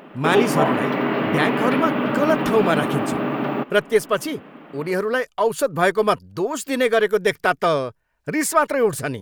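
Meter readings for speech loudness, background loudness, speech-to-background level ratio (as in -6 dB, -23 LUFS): -21.5 LUFS, -22.0 LUFS, 0.5 dB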